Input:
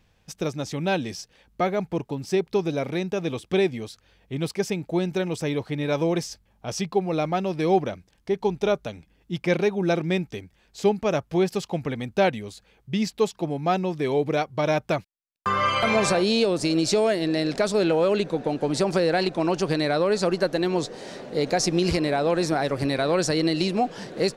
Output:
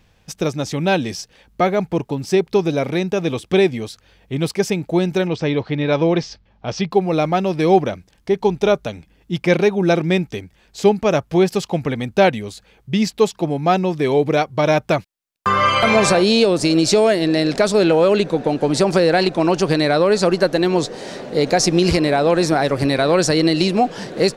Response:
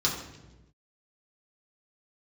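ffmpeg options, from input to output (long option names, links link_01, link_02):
-filter_complex "[0:a]asettb=1/sr,asplit=3[link_01][link_02][link_03];[link_01]atrim=end=5.274[link_04];[link_02]atrim=start=5.27:end=6.91,asetpts=PTS-STARTPTS,afade=type=in:duration=0.004:curve=qsin,afade=type=out:start_time=1.636:duration=0.004:curve=qsin,lowpass=frequency=4900:width=0.5412,lowpass=frequency=4900:width=1.3066[link_05];[link_03]atrim=start=6.906[link_06];[link_04][link_05]acrossfade=duration=0.004:curve1=hsin:curve2=qsin[link_07];[link_07][link_06]acrossfade=duration=0.004:curve1=qsin:curve2=hsin,volume=7dB"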